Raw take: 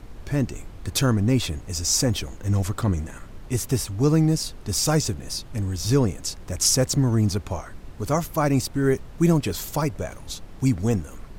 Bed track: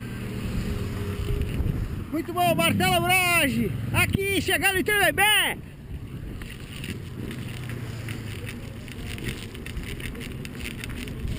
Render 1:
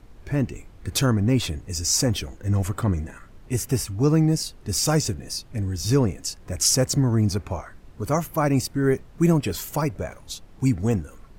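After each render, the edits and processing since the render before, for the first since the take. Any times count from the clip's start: noise print and reduce 7 dB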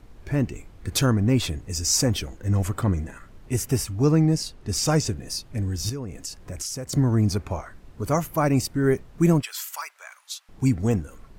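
4.11–5.14 high shelf 11000 Hz -10.5 dB; 5.89–6.93 compressor, threshold -29 dBFS; 9.42–10.49 HPF 1100 Hz 24 dB/oct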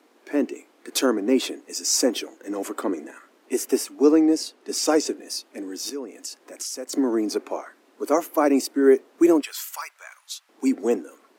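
dynamic EQ 380 Hz, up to +7 dB, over -36 dBFS, Q 0.97; steep high-pass 260 Hz 48 dB/oct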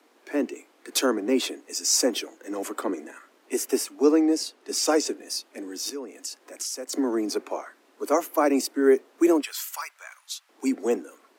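steep high-pass 180 Hz 96 dB/oct; low shelf 370 Hz -5.5 dB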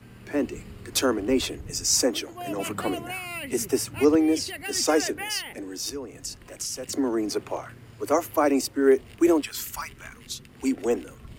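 add bed track -14 dB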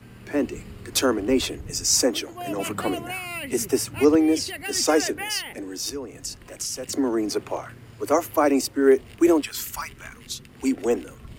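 gain +2 dB

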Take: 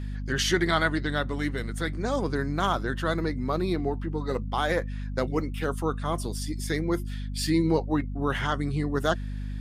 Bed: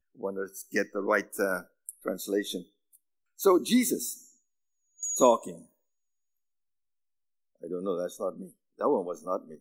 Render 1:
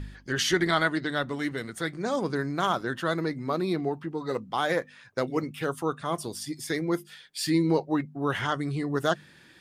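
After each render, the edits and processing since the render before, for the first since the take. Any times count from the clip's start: de-hum 50 Hz, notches 5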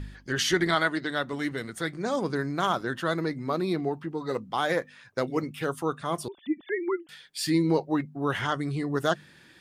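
0.75–1.33 low shelf 110 Hz -12 dB; 6.28–7.09 sine-wave speech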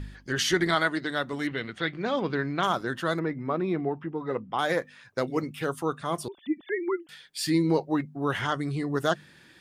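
1.47–2.63 synth low-pass 3000 Hz, resonance Q 2.7; 3.19–4.59 polynomial smoothing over 25 samples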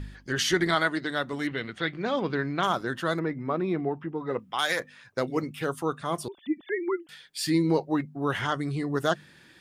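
4.39–4.8 tilt shelf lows -9 dB, about 1200 Hz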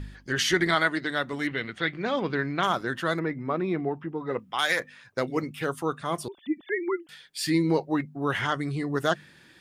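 dynamic EQ 2100 Hz, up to +4 dB, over -43 dBFS, Q 1.7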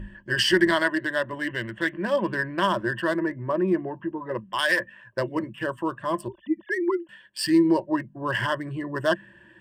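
Wiener smoothing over 9 samples; ripple EQ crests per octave 1.3, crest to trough 15 dB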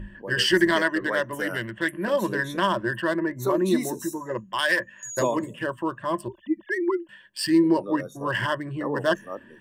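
add bed -4.5 dB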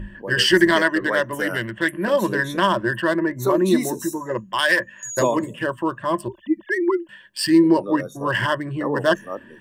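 gain +4.5 dB

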